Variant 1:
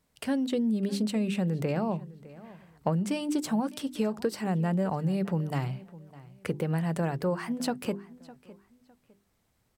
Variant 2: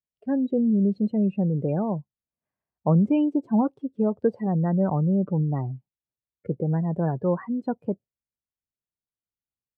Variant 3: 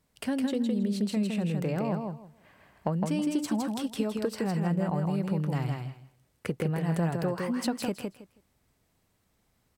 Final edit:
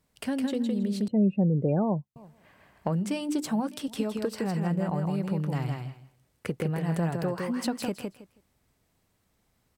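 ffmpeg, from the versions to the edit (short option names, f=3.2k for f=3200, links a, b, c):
-filter_complex "[2:a]asplit=3[a][b][c];[a]atrim=end=1.082[d];[1:a]atrim=start=1.078:end=2.162[e];[b]atrim=start=2.158:end=2.902[f];[0:a]atrim=start=2.898:end=3.882[g];[c]atrim=start=3.878[h];[d][e]acrossfade=d=0.004:c1=hsin:c2=hsin[i];[i][f]acrossfade=d=0.004:c1=hsin:c2=hsin[j];[j][g]acrossfade=d=0.004:c1=hsin:c2=hsin[k];[k][h]acrossfade=d=0.004:c1=hsin:c2=hsin"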